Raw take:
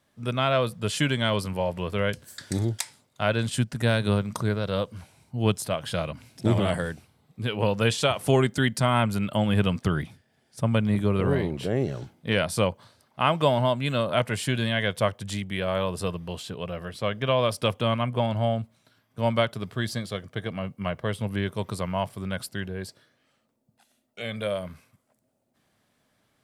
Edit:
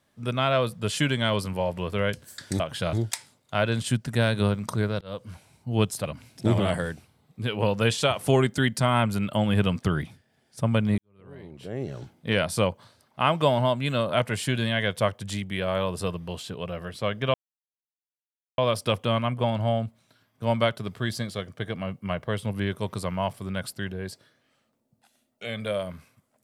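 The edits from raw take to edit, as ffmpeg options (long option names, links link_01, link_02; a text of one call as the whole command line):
ffmpeg -i in.wav -filter_complex "[0:a]asplit=7[link_01][link_02][link_03][link_04][link_05][link_06][link_07];[link_01]atrim=end=2.602[link_08];[link_02]atrim=start=5.718:end=6.052[link_09];[link_03]atrim=start=2.598:end=4.68,asetpts=PTS-STARTPTS,afade=type=out:start_time=2.078:duration=0.004:curve=hsin[link_10];[link_04]atrim=start=4.68:end=5.722,asetpts=PTS-STARTPTS,afade=type=in:duration=0.3[link_11];[link_05]atrim=start=6.048:end=10.98,asetpts=PTS-STARTPTS,afade=type=out:start_time=4.928:duration=0.004:curve=hsin[link_12];[link_06]atrim=start=10.98:end=17.34,asetpts=PTS-STARTPTS,afade=type=in:duration=1.19:curve=qua,afade=type=out:start_time=6.356:duration=0.004:curve=hsin,apad=pad_dur=1.24[link_13];[link_07]atrim=start=17.34,asetpts=PTS-STARTPTS,afade=type=in:duration=0.004:curve=hsin[link_14];[link_08][link_09]acrossfade=duration=0.004:curve1=hsin:curve2=hsin[link_15];[link_10][link_11]concat=n=2:v=0:a=1[link_16];[link_15][link_16]acrossfade=duration=0.004:curve1=hsin:curve2=hsin[link_17];[link_12][link_13][link_14]concat=n=3:v=0:a=1[link_18];[link_17][link_18]acrossfade=duration=0.004:curve1=hsin:curve2=hsin" out.wav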